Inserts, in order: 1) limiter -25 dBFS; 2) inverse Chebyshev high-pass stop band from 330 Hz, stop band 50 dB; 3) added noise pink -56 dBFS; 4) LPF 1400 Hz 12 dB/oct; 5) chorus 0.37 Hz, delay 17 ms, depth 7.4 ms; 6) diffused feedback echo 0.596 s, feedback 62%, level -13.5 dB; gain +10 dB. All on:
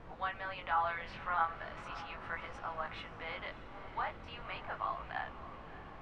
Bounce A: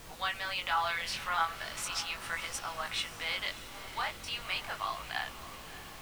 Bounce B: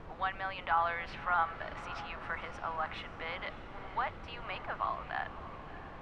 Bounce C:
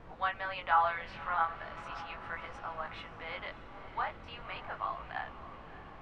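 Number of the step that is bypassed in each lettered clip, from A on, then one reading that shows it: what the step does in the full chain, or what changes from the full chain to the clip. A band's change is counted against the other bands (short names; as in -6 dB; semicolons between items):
4, 4 kHz band +15.0 dB; 5, crest factor change -1.5 dB; 1, momentary loudness spread change +4 LU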